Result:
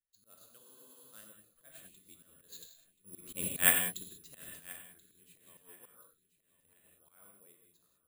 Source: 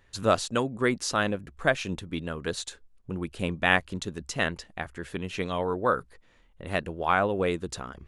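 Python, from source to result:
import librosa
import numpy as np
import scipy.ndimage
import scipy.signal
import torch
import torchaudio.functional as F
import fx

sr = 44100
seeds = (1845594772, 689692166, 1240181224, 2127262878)

p1 = fx.doppler_pass(x, sr, speed_mps=7, closest_m=1.9, pass_at_s=3.44)
p2 = fx.peak_eq(p1, sr, hz=810.0, db=-13.0, octaves=0.21)
p3 = fx.rev_gated(p2, sr, seeds[0], gate_ms=220, shape='flat', drr_db=1.5)
p4 = fx.auto_swell(p3, sr, attack_ms=117.0)
p5 = fx.lowpass_res(p4, sr, hz=4000.0, q=3.0)
p6 = p5 + fx.echo_feedback(p5, sr, ms=1031, feedback_pct=33, wet_db=-15.0, dry=0)
p7 = (np.kron(scipy.signal.resample_poly(p6, 1, 4), np.eye(4)[0]) * 4)[:len(p6)]
p8 = fx.spec_freeze(p7, sr, seeds[1], at_s=0.61, hold_s=0.52)
p9 = fx.upward_expand(p8, sr, threshold_db=-41.0, expansion=1.5)
y = p9 * librosa.db_to_amplitude(-7.0)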